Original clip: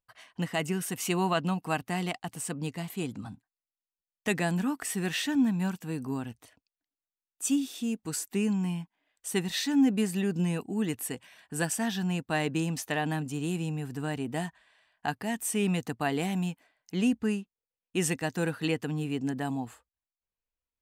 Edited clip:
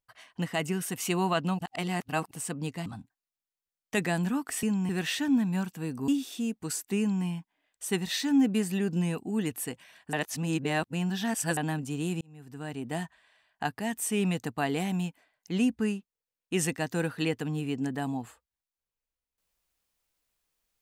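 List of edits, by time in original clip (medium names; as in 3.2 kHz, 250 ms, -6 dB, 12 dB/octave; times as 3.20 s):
1.59–2.31 s: reverse
2.86–3.19 s: delete
6.15–7.51 s: delete
8.42–8.68 s: copy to 4.96 s
11.56–13.00 s: reverse
13.64–14.46 s: fade in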